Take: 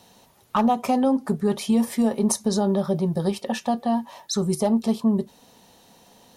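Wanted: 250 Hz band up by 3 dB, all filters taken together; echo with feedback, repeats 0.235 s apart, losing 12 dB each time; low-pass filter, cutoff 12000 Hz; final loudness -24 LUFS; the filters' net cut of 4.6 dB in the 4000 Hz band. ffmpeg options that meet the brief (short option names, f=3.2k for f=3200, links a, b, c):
-af "lowpass=12k,equalizer=f=250:t=o:g=3.5,equalizer=f=4k:t=o:g=-6,aecho=1:1:235|470|705:0.251|0.0628|0.0157,volume=-3dB"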